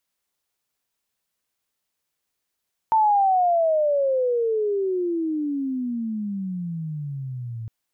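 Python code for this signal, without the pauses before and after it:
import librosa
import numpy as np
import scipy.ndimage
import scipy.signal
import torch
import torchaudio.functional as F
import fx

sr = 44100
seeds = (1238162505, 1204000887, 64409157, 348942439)

y = fx.chirp(sr, length_s=4.76, from_hz=900.0, to_hz=110.0, law='logarithmic', from_db=-14.5, to_db=-29.5)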